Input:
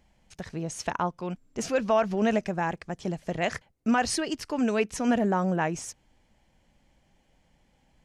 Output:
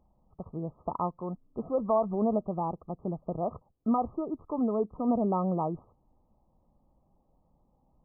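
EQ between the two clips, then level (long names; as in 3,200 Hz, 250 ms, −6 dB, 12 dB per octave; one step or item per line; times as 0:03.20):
linear-phase brick-wall low-pass 1,300 Hz
−2.5 dB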